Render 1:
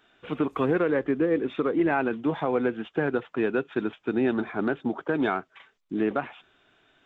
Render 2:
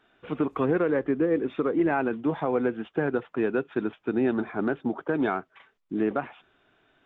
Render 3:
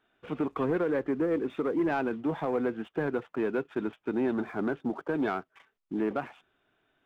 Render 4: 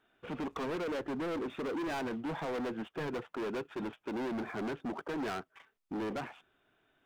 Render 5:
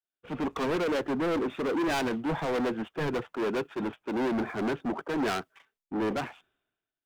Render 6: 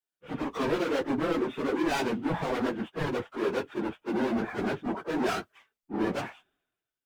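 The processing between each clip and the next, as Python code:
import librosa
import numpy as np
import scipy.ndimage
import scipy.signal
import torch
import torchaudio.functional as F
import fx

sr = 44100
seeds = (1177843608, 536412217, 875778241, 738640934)

y1 = fx.high_shelf(x, sr, hz=3400.0, db=-11.0)
y2 = fx.leveller(y1, sr, passes=1)
y2 = F.gain(torch.from_numpy(y2), -6.0).numpy()
y3 = np.clip(10.0 ** (34.0 / 20.0) * y2, -1.0, 1.0) / 10.0 ** (34.0 / 20.0)
y4 = fx.band_widen(y3, sr, depth_pct=100)
y4 = F.gain(torch.from_numpy(y4), 7.5).numpy()
y5 = fx.phase_scramble(y4, sr, seeds[0], window_ms=50)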